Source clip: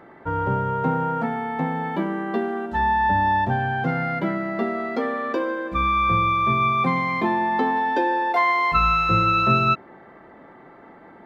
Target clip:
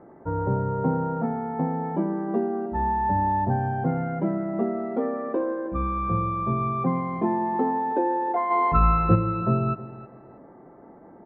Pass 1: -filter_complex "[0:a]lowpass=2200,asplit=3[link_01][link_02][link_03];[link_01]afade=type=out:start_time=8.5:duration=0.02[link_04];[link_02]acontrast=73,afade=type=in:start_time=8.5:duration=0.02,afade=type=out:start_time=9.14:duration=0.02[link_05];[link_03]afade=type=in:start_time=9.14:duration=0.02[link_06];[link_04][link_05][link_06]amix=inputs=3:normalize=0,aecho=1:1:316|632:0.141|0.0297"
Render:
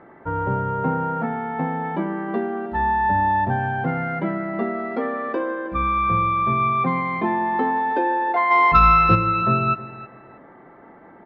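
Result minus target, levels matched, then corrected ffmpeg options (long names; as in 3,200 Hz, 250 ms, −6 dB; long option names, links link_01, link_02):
2,000 Hz band +10.0 dB
-filter_complex "[0:a]lowpass=760,asplit=3[link_01][link_02][link_03];[link_01]afade=type=out:start_time=8.5:duration=0.02[link_04];[link_02]acontrast=73,afade=type=in:start_time=8.5:duration=0.02,afade=type=out:start_time=9.14:duration=0.02[link_05];[link_03]afade=type=in:start_time=9.14:duration=0.02[link_06];[link_04][link_05][link_06]amix=inputs=3:normalize=0,aecho=1:1:316|632:0.141|0.0297"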